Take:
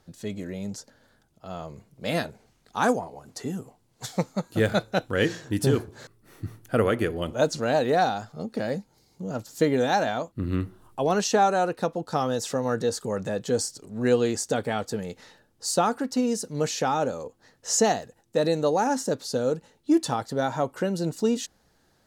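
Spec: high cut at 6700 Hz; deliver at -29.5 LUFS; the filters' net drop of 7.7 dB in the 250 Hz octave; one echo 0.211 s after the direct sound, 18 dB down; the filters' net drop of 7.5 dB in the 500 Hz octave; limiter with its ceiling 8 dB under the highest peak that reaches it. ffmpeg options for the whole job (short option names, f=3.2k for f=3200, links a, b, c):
-af "lowpass=6.7k,equalizer=f=250:t=o:g=-8,equalizer=f=500:t=o:g=-7,alimiter=limit=-20.5dB:level=0:latency=1,aecho=1:1:211:0.126,volume=4dB"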